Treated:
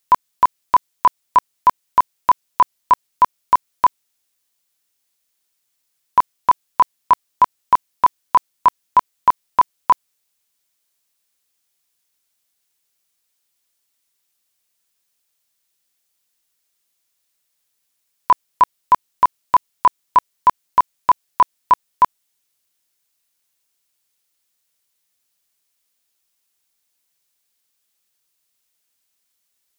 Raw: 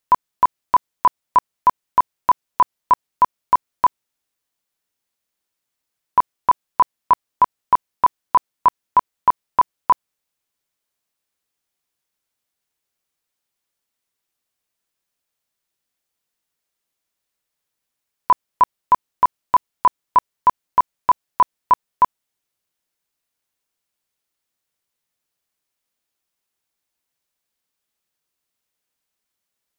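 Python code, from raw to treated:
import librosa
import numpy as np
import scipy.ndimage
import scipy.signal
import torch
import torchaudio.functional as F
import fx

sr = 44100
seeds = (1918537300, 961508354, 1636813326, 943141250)

y = fx.high_shelf(x, sr, hz=2400.0, db=10.0)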